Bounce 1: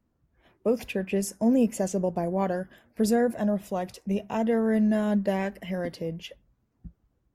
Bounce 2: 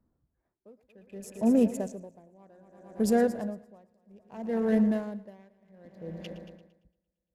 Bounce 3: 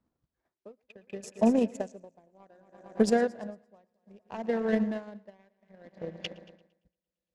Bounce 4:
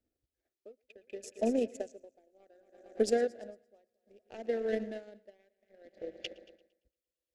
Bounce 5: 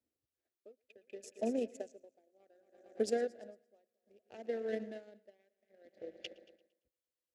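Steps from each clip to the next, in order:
adaptive Wiener filter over 15 samples; echo machine with several playback heads 114 ms, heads first and second, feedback 67%, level −16 dB; tremolo with a sine in dB 0.63 Hz, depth 30 dB
spectral tilt +2.5 dB per octave; transient designer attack +11 dB, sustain −6 dB; high-frequency loss of the air 120 metres
phaser with its sweep stopped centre 420 Hz, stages 4; level −2 dB
high-pass filter 90 Hz 12 dB per octave; level −5 dB

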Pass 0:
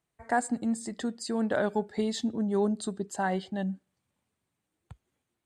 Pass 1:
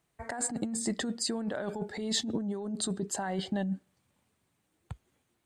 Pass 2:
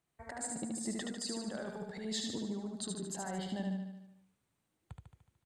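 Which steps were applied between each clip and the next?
compressor whose output falls as the input rises −34 dBFS, ratio −1; level +1.5 dB
repeating echo 74 ms, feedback 58%, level −3.5 dB; level −8.5 dB

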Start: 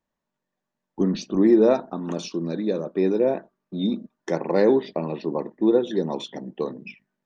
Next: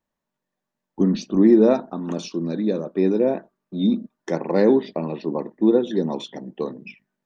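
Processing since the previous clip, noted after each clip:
dynamic equaliser 230 Hz, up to +6 dB, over −33 dBFS, Q 2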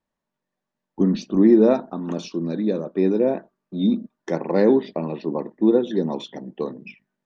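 high-frequency loss of the air 53 metres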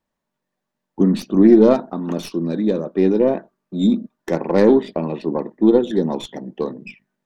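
stylus tracing distortion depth 0.07 ms
level +3.5 dB

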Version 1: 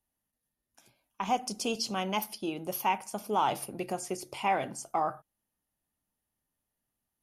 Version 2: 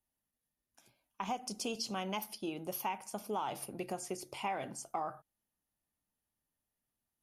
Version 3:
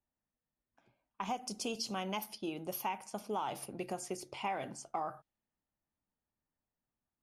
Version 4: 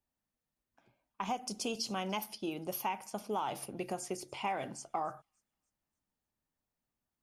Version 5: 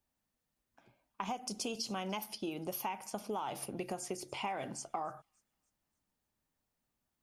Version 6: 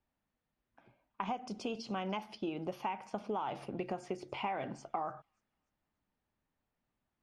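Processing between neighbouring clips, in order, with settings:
downward compressor, threshold −29 dBFS, peak gain reduction 7 dB; level −4 dB
low-pass that shuts in the quiet parts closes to 1,700 Hz, open at −36 dBFS
delay with a high-pass on its return 292 ms, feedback 40%, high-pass 4,900 Hz, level −23.5 dB; level +1.5 dB
downward compressor 2.5 to 1, threshold −41 dBFS, peak gain reduction 7.5 dB; level +3.5 dB
low-pass filter 2,800 Hz 12 dB per octave; level +1.5 dB

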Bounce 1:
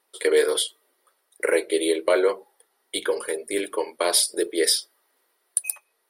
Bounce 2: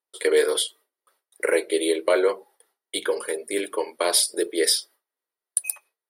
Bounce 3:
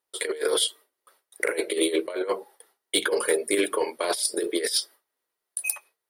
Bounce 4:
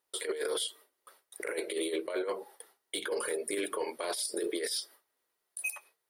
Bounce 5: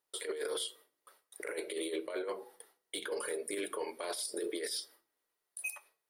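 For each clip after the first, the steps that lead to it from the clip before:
low-shelf EQ 67 Hz −8.5 dB; noise gate with hold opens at −53 dBFS
compressor whose output falls as the input rises −25 dBFS, ratio −0.5; soft clipping −12 dBFS, distortion −21 dB; level +2 dB
downward compressor, threshold −29 dBFS, peak gain reduction 10.5 dB; brickwall limiter −26 dBFS, peak gain reduction 11 dB; level +1.5 dB
rectangular room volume 520 cubic metres, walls furnished, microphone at 0.37 metres; level −4 dB

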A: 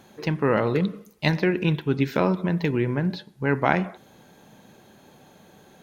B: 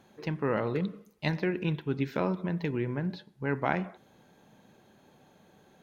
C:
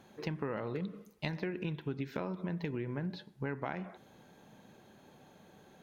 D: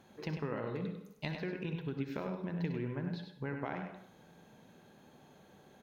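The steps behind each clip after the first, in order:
high-shelf EQ 5,000 Hz −5.5 dB; level −7.5 dB
downward compressor 12 to 1, threshold −34 dBFS, peak gain reduction 13 dB; level +1 dB
slap from a distant wall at 17 metres, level −6 dB; on a send at −9 dB: convolution reverb RT60 0.55 s, pre-delay 55 ms; on the sum: level −2.5 dB

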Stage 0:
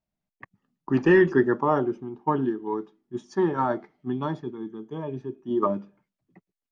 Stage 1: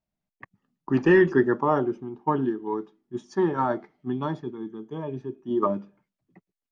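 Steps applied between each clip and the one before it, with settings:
no processing that can be heard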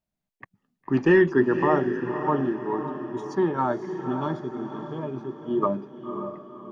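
feedback delay with all-pass diffusion 547 ms, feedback 45%, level −8 dB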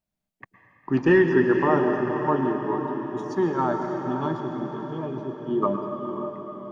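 dense smooth reverb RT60 2.7 s, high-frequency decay 0.9×, pre-delay 100 ms, DRR 5 dB

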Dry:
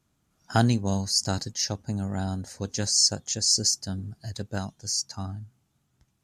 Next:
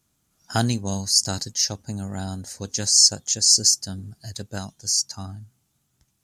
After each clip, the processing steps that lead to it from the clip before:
high-shelf EQ 4,200 Hz +11 dB
level −1 dB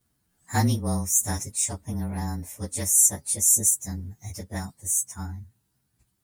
partials spread apart or drawn together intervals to 111%
level +1.5 dB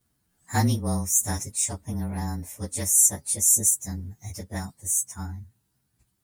no processing that can be heard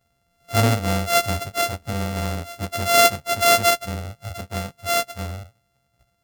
samples sorted by size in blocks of 64 samples
level +4 dB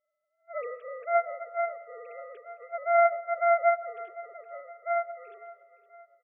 three sine waves on the formant tracks
repeating echo 515 ms, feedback 51%, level −18 dB
on a send at −17.5 dB: convolution reverb RT60 1.6 s, pre-delay 80 ms
on the sum: level −7.5 dB

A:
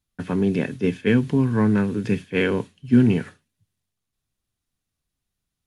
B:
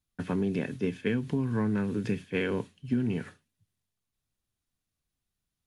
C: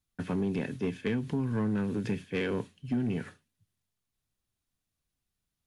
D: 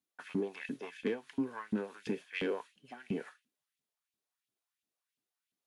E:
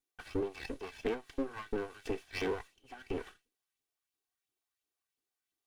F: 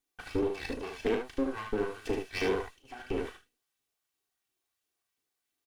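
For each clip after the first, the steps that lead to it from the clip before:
downward compressor 6 to 1, threshold −21 dBFS, peak gain reduction 10.5 dB; level −4 dB
soft clipping −22 dBFS, distortion −19 dB
auto-filter high-pass saw up 2.9 Hz 200–3,100 Hz; level −5.5 dB
lower of the sound and its delayed copy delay 2.6 ms; level +1 dB
ambience of single reflections 37 ms −8 dB, 75 ms −5 dB; level +3.5 dB

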